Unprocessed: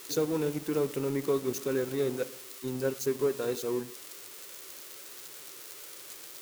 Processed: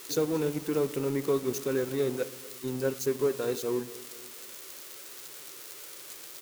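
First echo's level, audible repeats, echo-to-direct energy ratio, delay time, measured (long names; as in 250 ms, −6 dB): −21.0 dB, 3, −19.5 dB, 239 ms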